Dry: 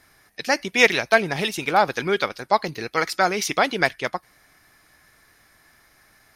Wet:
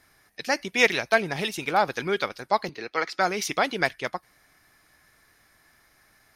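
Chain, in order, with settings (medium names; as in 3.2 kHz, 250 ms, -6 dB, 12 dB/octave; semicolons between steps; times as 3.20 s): 2.69–3.19 s: three-band isolator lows -12 dB, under 240 Hz, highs -18 dB, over 5.7 kHz; trim -4 dB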